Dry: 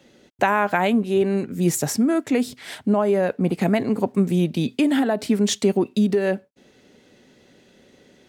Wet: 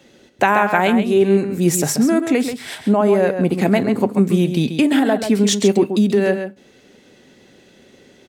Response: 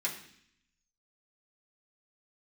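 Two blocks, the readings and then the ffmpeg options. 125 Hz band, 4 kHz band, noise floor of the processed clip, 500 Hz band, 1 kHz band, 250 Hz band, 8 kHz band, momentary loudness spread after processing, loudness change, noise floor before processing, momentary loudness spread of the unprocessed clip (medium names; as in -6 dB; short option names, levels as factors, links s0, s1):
+4.0 dB, +5.0 dB, -51 dBFS, +5.0 dB, +4.5 dB, +4.5 dB, +5.5 dB, 5 LU, +4.5 dB, -56 dBFS, 4 LU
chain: -filter_complex "[0:a]asplit=2[s0][s1];[s1]adelay=134.1,volume=0.398,highshelf=f=4000:g=-3.02[s2];[s0][s2]amix=inputs=2:normalize=0,asplit=2[s3][s4];[1:a]atrim=start_sample=2205,atrim=end_sample=3087[s5];[s4][s5]afir=irnorm=-1:irlink=0,volume=0.141[s6];[s3][s6]amix=inputs=2:normalize=0,volume=1.58"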